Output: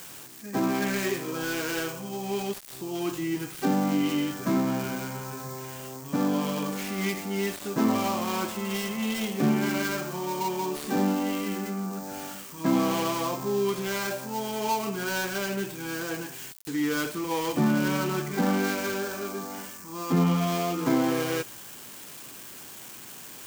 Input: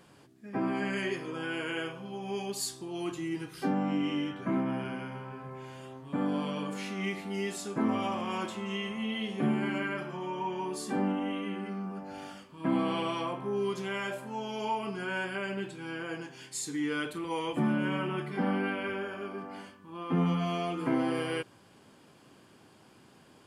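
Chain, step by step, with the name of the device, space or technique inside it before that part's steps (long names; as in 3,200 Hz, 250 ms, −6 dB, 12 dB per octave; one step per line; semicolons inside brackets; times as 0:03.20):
budget class-D amplifier (gap after every zero crossing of 0.14 ms; spike at every zero crossing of −32 dBFS)
level +5 dB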